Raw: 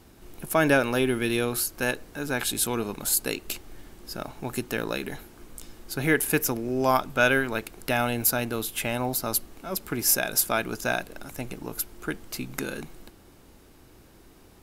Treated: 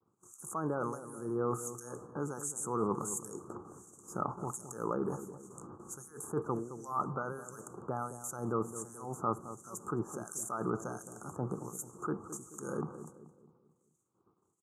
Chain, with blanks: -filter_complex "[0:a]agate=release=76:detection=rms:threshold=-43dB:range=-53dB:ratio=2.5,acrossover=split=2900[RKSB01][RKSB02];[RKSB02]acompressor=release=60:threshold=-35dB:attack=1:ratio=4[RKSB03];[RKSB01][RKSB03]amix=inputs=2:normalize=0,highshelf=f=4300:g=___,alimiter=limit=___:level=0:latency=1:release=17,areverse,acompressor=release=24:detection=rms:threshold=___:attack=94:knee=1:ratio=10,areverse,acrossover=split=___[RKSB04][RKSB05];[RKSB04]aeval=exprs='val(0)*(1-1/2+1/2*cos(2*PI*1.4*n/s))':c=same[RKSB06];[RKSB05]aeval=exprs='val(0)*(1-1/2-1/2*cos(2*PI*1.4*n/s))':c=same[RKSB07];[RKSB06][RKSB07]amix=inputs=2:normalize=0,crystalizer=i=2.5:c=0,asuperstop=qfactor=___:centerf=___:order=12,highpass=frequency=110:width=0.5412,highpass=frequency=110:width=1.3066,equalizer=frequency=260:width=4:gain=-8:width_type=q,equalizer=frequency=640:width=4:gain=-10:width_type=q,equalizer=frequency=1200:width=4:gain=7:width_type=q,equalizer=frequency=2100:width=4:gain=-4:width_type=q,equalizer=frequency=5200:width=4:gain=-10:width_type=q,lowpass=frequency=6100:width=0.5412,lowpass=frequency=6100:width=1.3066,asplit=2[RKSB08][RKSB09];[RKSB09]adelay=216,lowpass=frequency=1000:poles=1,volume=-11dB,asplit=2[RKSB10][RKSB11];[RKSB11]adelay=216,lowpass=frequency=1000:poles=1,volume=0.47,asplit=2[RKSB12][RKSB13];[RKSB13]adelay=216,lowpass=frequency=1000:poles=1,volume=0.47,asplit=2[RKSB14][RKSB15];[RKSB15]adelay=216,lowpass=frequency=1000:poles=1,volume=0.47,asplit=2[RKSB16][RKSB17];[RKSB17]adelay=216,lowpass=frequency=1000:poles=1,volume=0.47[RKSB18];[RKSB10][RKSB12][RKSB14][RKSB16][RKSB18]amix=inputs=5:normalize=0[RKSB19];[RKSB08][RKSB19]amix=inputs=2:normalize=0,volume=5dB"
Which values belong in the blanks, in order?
8, -14dB, -38dB, 2100, 0.55, 3000